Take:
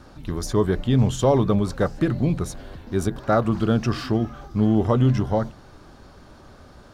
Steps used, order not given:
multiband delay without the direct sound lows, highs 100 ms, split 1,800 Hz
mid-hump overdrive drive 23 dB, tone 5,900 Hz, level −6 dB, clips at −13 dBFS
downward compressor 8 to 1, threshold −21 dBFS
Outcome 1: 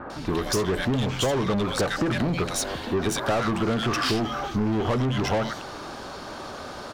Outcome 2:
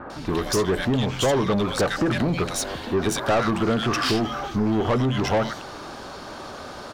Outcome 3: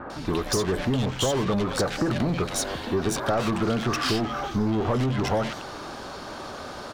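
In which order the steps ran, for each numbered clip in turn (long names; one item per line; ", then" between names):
multiband delay without the direct sound, then mid-hump overdrive, then downward compressor
multiband delay without the direct sound, then downward compressor, then mid-hump overdrive
mid-hump overdrive, then multiband delay without the direct sound, then downward compressor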